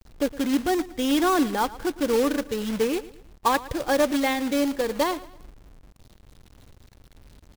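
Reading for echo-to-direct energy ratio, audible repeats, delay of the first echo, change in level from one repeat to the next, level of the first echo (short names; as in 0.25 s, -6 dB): -17.5 dB, 3, 0.112 s, -8.0 dB, -18.0 dB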